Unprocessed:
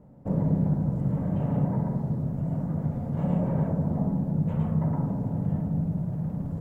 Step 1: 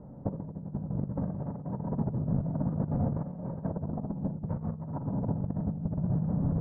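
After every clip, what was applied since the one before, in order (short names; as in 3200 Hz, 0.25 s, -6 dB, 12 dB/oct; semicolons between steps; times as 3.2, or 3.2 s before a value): LPF 1500 Hz 24 dB/oct; negative-ratio compressor -31 dBFS, ratio -0.5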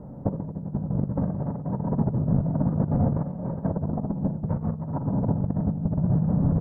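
echo 0.69 s -22.5 dB; gain +6.5 dB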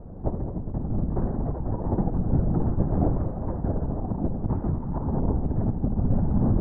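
Schroeder reverb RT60 2 s, combs from 33 ms, DRR 4 dB; LPC vocoder at 8 kHz whisper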